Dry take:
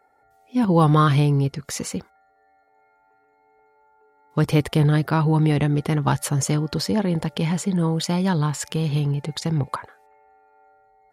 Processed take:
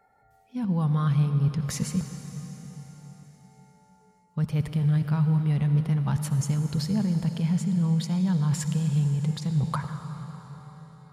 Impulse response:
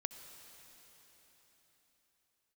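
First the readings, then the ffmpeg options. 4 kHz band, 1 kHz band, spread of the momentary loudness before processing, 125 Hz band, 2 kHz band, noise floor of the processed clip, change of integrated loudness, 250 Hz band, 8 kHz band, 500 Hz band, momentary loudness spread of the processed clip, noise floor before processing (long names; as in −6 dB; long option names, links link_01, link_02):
−9.5 dB, −13.0 dB, 11 LU, −2.5 dB, −11.5 dB, −62 dBFS, −4.5 dB, −4.0 dB, −7.0 dB, −15.5 dB, 16 LU, −62 dBFS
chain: -filter_complex "[0:a]lowshelf=frequency=240:width_type=q:width=3:gain=6.5,areverse,acompressor=threshold=-22dB:ratio=5,areverse[link_01];[1:a]atrim=start_sample=2205[link_02];[link_01][link_02]afir=irnorm=-1:irlink=0"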